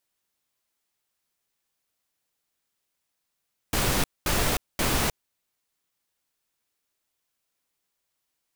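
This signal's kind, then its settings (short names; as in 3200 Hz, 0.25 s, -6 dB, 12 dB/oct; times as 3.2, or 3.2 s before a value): noise bursts pink, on 0.31 s, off 0.22 s, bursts 3, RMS -24 dBFS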